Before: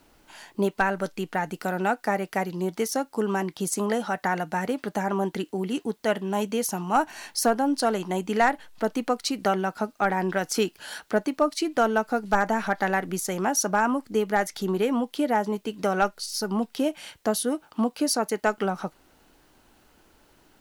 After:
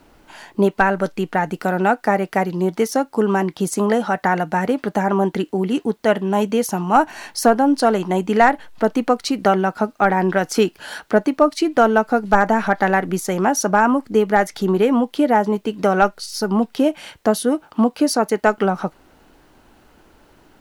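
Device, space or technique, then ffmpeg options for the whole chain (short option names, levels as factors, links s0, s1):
behind a face mask: -af "highshelf=f=3000:g=-8,volume=2.66"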